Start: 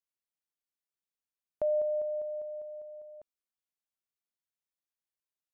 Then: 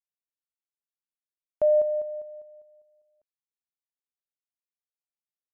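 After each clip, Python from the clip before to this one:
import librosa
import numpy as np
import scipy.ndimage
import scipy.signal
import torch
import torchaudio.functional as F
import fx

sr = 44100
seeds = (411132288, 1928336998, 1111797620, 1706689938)

y = fx.upward_expand(x, sr, threshold_db=-47.0, expansion=2.5)
y = F.gain(torch.from_numpy(y), 8.5).numpy()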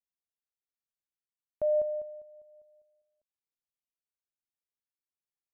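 y = fx.low_shelf(x, sr, hz=280.0, db=9.5)
y = y * (1.0 - 0.47 / 2.0 + 0.47 / 2.0 * np.cos(2.0 * np.pi * 1.1 * (np.arange(len(y)) / sr)))
y = F.gain(torch.from_numpy(y), -7.5).numpy()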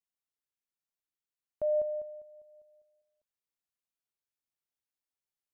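y = fx.rider(x, sr, range_db=10, speed_s=0.5)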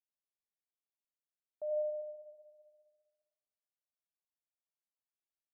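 y = fx.bandpass_q(x, sr, hz=670.0, q=2.3)
y = fx.rev_freeverb(y, sr, rt60_s=1.3, hf_ratio=0.35, predelay_ms=45, drr_db=1.0)
y = F.gain(torch.from_numpy(y), -8.0).numpy()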